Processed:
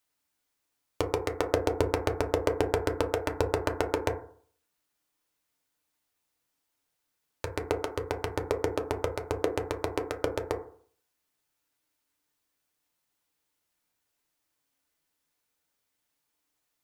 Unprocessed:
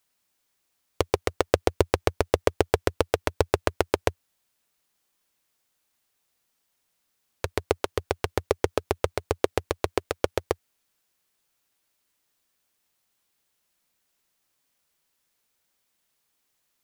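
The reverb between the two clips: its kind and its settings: FDN reverb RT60 0.52 s, low-frequency decay 1×, high-frequency decay 0.25×, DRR 2.5 dB; trim -6 dB

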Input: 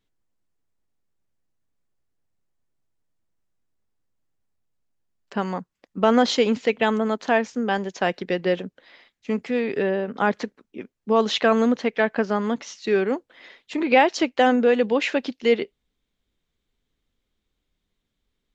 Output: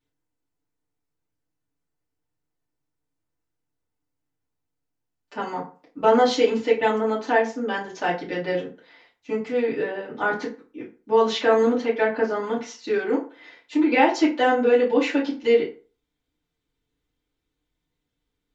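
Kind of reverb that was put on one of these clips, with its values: FDN reverb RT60 0.37 s, low-frequency decay 0.9×, high-frequency decay 0.65×, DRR -8 dB; trim -9.5 dB

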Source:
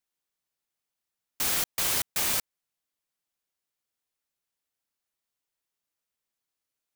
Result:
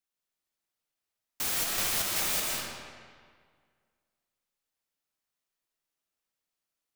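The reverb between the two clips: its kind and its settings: algorithmic reverb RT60 1.9 s, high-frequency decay 0.75×, pre-delay 115 ms, DRR -2 dB; trim -4 dB

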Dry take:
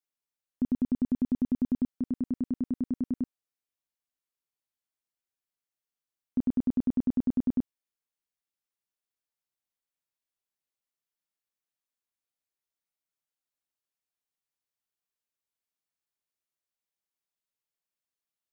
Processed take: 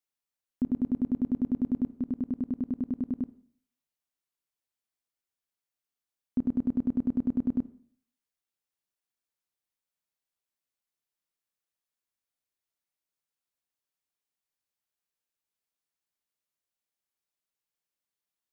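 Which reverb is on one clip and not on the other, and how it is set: Schroeder reverb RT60 0.56 s, DRR 16 dB

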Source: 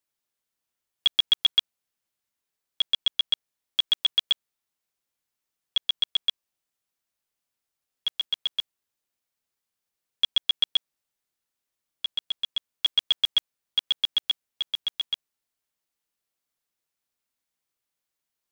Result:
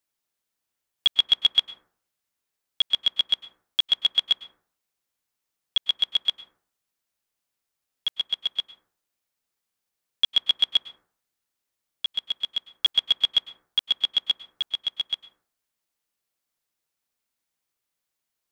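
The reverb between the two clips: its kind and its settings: plate-style reverb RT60 0.52 s, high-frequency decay 0.3×, pre-delay 95 ms, DRR 12 dB; trim +1.5 dB

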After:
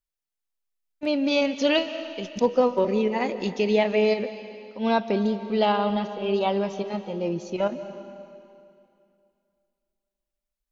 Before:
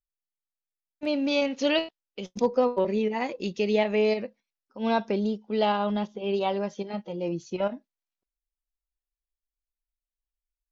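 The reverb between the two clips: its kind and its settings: algorithmic reverb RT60 2.5 s, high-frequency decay 0.95×, pre-delay 110 ms, DRR 11 dB; trim +2.5 dB

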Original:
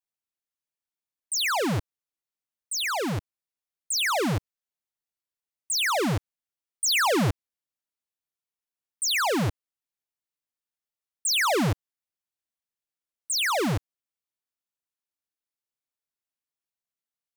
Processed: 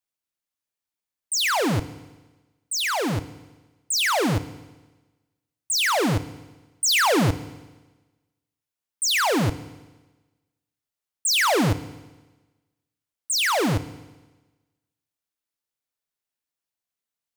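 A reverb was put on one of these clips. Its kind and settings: FDN reverb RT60 1.2 s, low-frequency decay 1×, high-frequency decay 1×, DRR 13 dB; trim +3 dB

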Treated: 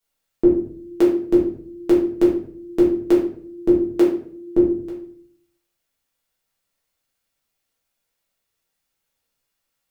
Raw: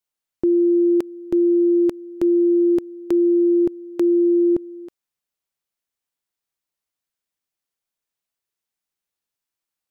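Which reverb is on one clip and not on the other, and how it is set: simulated room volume 67 m³, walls mixed, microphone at 1.6 m; trim +2 dB

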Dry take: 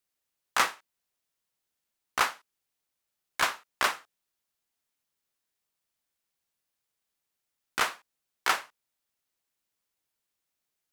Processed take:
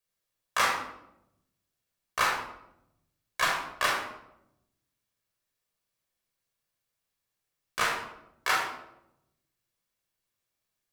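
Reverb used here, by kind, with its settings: simulated room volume 2300 m³, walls furnished, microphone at 5.6 m; trim -4.5 dB

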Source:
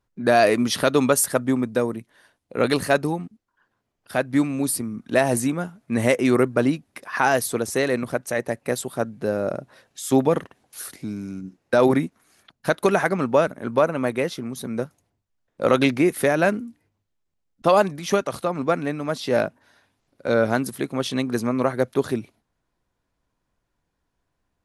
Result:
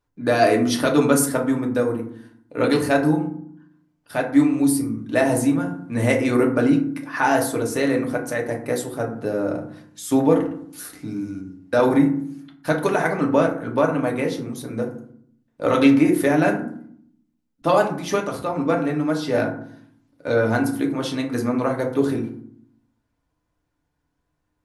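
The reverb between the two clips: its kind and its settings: FDN reverb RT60 0.6 s, low-frequency decay 1.6×, high-frequency decay 0.45×, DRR 0 dB; trim -3 dB

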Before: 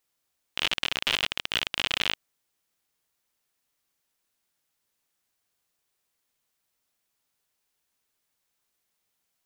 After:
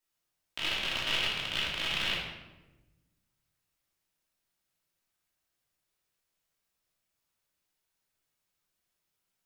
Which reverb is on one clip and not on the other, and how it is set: simulated room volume 520 m³, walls mixed, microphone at 2.8 m; trim -10 dB

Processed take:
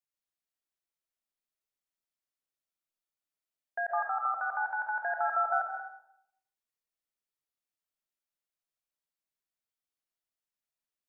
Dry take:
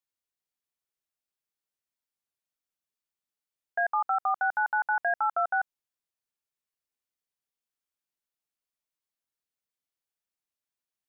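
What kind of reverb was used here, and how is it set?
algorithmic reverb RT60 0.75 s, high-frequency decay 0.55×, pre-delay 95 ms, DRR 0 dB; trim -6 dB

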